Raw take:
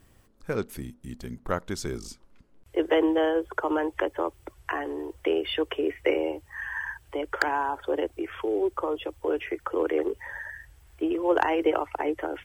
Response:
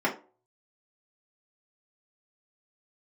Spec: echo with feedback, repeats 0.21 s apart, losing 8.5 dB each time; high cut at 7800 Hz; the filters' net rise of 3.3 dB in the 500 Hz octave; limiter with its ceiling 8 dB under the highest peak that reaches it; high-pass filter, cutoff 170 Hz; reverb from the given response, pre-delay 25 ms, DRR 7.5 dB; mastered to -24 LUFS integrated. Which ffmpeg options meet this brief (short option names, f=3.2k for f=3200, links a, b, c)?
-filter_complex "[0:a]highpass=170,lowpass=7.8k,equalizer=f=500:t=o:g=4,alimiter=limit=-16dB:level=0:latency=1,aecho=1:1:210|420|630|840:0.376|0.143|0.0543|0.0206,asplit=2[a][b];[1:a]atrim=start_sample=2205,adelay=25[c];[b][c]afir=irnorm=-1:irlink=0,volume=-20dB[d];[a][d]amix=inputs=2:normalize=0,volume=2.5dB"